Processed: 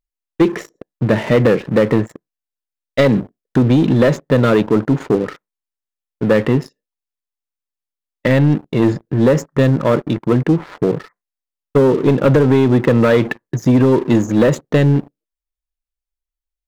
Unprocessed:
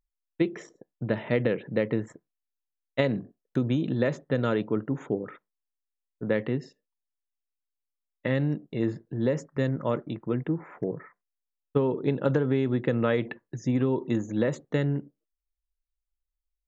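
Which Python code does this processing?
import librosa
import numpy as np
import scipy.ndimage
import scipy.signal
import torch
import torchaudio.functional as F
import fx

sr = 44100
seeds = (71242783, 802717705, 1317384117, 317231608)

y = fx.leveller(x, sr, passes=3)
y = y * 10.0 ** (4.5 / 20.0)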